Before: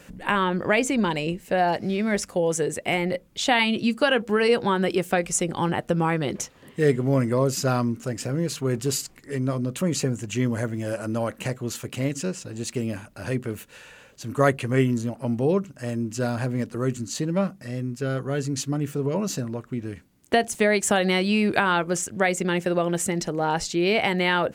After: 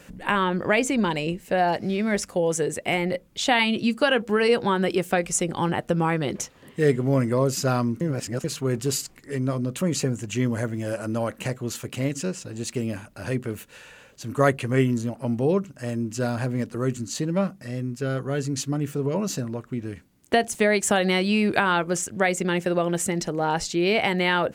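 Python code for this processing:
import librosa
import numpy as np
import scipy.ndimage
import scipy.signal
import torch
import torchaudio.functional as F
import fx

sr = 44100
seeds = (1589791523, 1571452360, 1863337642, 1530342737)

y = fx.edit(x, sr, fx.reverse_span(start_s=8.01, length_s=0.43), tone=tone)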